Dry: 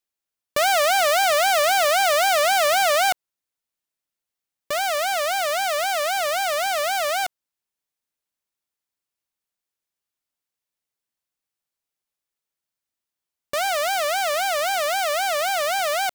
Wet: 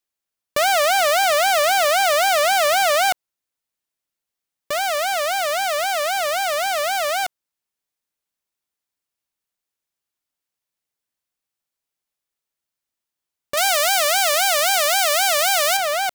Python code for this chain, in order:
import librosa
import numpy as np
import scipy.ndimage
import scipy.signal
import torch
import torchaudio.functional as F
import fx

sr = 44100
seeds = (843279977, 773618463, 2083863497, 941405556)

y = fx.high_shelf(x, sr, hz=2600.0, db=9.5, at=(13.57, 15.77))
y = y * librosa.db_to_amplitude(1.5)